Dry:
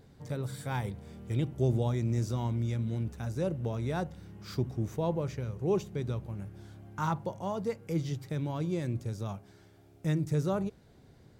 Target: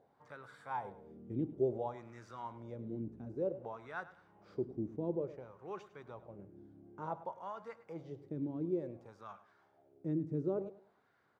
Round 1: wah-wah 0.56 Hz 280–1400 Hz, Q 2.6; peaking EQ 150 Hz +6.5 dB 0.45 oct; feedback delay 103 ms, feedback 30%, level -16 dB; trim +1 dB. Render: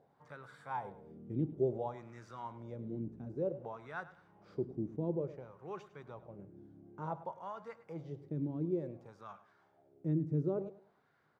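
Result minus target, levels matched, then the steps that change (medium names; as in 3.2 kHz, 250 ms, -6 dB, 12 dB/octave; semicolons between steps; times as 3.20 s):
125 Hz band +3.5 dB
remove: peaking EQ 150 Hz +6.5 dB 0.45 oct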